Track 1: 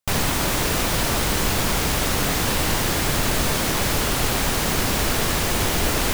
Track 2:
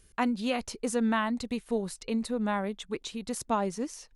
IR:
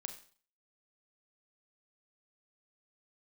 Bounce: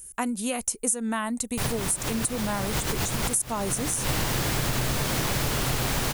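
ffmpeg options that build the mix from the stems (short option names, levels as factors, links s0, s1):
-filter_complex "[0:a]equalizer=f=130:w=5.3:g=10,adelay=1500,volume=1.12[s0];[1:a]equalizer=f=9200:t=o:w=0.25:g=3.5,aexciter=amount=11.9:drive=2.5:freq=6500,volume=1.19,asplit=2[s1][s2];[s2]apad=whole_len=336739[s3];[s0][s3]sidechaincompress=threshold=0.0126:ratio=4:attack=6.5:release=103[s4];[s4][s1]amix=inputs=2:normalize=0,acompressor=threshold=0.0708:ratio=5"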